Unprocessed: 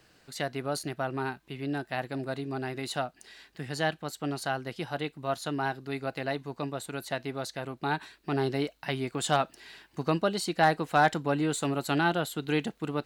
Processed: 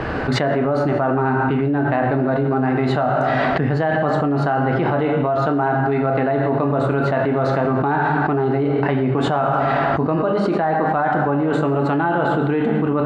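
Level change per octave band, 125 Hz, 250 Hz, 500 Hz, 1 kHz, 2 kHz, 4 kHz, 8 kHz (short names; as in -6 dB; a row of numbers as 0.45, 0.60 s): +15.0 dB, +13.5 dB, +13.5 dB, +11.5 dB, +9.0 dB, +1.5 dB, n/a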